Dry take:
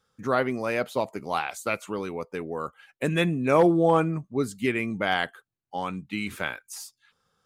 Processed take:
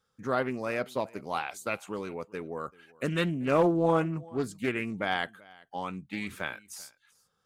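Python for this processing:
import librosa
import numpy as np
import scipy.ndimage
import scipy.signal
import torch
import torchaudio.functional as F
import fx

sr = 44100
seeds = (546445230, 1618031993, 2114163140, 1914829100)

y = x + 10.0 ** (-23.5 / 20.0) * np.pad(x, (int(387 * sr / 1000.0), 0))[:len(x)]
y = fx.doppler_dist(y, sr, depth_ms=0.24)
y = y * librosa.db_to_amplitude(-4.5)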